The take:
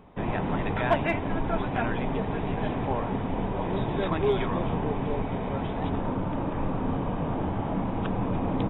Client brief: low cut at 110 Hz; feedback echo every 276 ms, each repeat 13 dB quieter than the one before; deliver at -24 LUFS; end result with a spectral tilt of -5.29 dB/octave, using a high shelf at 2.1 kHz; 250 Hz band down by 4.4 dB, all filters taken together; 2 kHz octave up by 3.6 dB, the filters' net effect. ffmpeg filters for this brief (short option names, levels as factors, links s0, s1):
-af "highpass=110,equalizer=f=250:t=o:g=-5.5,equalizer=f=2000:t=o:g=7,highshelf=f=2100:g=-4.5,aecho=1:1:276|552|828:0.224|0.0493|0.0108,volume=2.11"